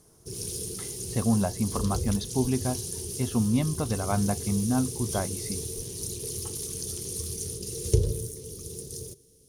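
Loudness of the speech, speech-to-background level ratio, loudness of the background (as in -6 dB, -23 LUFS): -29.0 LUFS, 4.0 dB, -33.0 LUFS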